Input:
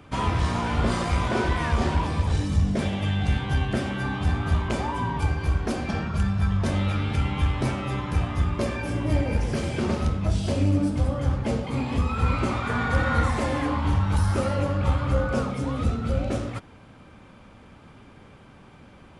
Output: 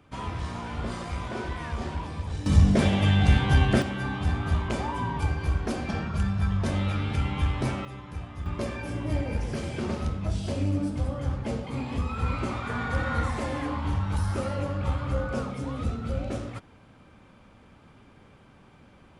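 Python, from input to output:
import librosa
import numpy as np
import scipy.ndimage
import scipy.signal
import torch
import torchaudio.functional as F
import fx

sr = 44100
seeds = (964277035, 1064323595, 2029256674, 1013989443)

y = fx.gain(x, sr, db=fx.steps((0.0, -9.0), (2.46, 4.0), (3.82, -2.5), (7.85, -12.5), (8.46, -5.0)))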